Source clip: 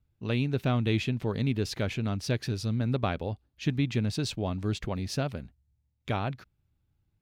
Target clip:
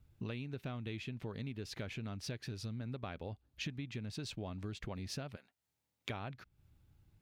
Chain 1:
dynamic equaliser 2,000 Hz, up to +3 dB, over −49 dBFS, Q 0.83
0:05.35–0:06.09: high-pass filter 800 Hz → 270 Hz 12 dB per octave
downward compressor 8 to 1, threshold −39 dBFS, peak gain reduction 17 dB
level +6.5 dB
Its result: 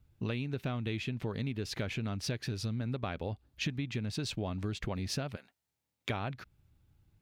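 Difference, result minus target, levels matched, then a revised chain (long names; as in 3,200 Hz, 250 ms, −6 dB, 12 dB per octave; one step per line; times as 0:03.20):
downward compressor: peak gain reduction −7 dB
dynamic equaliser 2,000 Hz, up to +3 dB, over −49 dBFS, Q 0.83
0:05.35–0:06.09: high-pass filter 800 Hz → 270 Hz 12 dB per octave
downward compressor 8 to 1, threshold −47 dBFS, peak gain reduction 24 dB
level +6.5 dB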